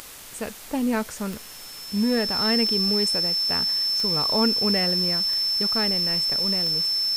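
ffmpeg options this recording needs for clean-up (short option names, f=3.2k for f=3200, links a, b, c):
-af "adeclick=t=4,bandreject=f=5.3k:w=30,afwtdn=0.0089"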